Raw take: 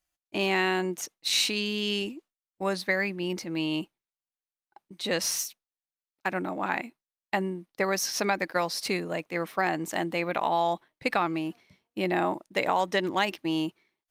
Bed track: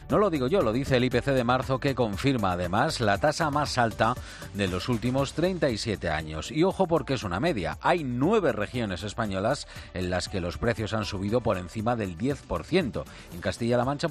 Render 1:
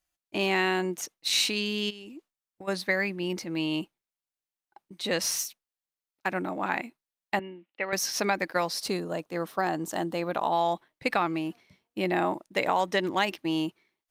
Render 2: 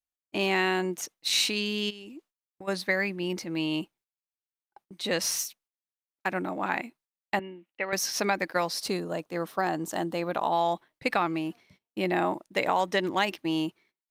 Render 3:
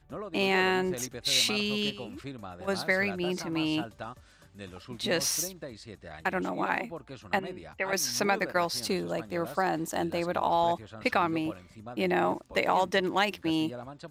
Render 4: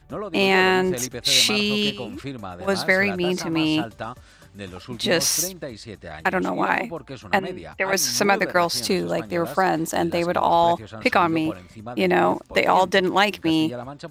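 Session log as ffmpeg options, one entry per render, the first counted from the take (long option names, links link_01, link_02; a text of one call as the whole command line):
ffmpeg -i in.wav -filter_complex "[0:a]asplit=3[link_01][link_02][link_03];[link_01]afade=type=out:start_time=1.89:duration=0.02[link_04];[link_02]acompressor=threshold=-39dB:ratio=16:attack=3.2:release=140:knee=1:detection=peak,afade=type=in:start_time=1.89:duration=0.02,afade=type=out:start_time=2.67:duration=0.02[link_05];[link_03]afade=type=in:start_time=2.67:duration=0.02[link_06];[link_04][link_05][link_06]amix=inputs=3:normalize=0,asettb=1/sr,asplit=3[link_07][link_08][link_09];[link_07]atrim=end=7.394[link_10];[link_08]atrim=start=7.39:end=7.93,asetpts=PTS-STARTPTS,afade=type=in:duration=0.004:curve=qsin,afade=type=out:start_time=0.536:duration=0.004:curve=qsin,highpass=380,equalizer=frequency=420:width_type=q:width=4:gain=-9,equalizer=frequency=690:width_type=q:width=4:gain=-7,equalizer=frequency=1100:width_type=q:width=4:gain=-10,equalizer=frequency=1600:width_type=q:width=4:gain=-4,equalizer=frequency=2800:width_type=q:width=4:gain=9,lowpass=frequency=2900:width=0.5412,lowpass=frequency=2900:width=1.3066[link_11];[link_09]atrim=start=7.926[link_12];[link_10][link_11]acrossfade=duration=0.004:curve1=hsin:curve2=qsin[link_13];[link_13][link_12]acrossfade=duration=0.004:curve1=qsin:curve2=hsin,asettb=1/sr,asplit=3[link_14][link_15][link_16];[link_14]atrim=end=8.824[link_17];[link_15]atrim=start=8.82:end=10.53,asetpts=PTS-STARTPTS,afade=type=in:duration=0.004:curve=qsin,afade=type=out:start_time=1.706:duration=0.004:curve=qsin,equalizer=frequency=2200:width=2.4:gain=-10.5[link_18];[link_16]atrim=start=10.526[link_19];[link_17][link_18]acrossfade=duration=0.004:curve1=hsin:curve2=qsin[link_20];[link_20][link_19]acrossfade=duration=0.004:curve1=qsin:curve2=hsin" out.wav
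ffmpeg -i in.wav -af "agate=range=-15dB:threshold=-59dB:ratio=16:detection=peak" out.wav
ffmpeg -i in.wav -i bed.wav -filter_complex "[1:a]volume=-16.5dB[link_01];[0:a][link_01]amix=inputs=2:normalize=0" out.wav
ffmpeg -i in.wav -af "volume=8dB" out.wav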